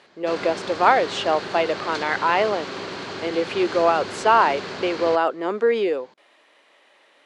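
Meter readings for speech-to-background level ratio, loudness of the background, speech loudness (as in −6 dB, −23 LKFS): 10.5 dB, −32.0 LKFS, −21.5 LKFS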